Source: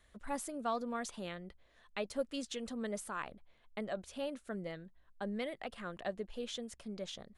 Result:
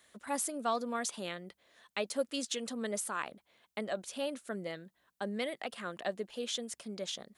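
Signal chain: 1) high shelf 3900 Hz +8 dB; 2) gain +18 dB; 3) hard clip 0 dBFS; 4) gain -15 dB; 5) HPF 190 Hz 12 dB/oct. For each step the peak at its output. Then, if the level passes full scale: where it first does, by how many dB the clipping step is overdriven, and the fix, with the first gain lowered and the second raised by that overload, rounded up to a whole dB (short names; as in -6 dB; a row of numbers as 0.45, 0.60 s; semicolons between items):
-23.0, -5.0, -5.0, -20.0, -19.5 dBFS; no overload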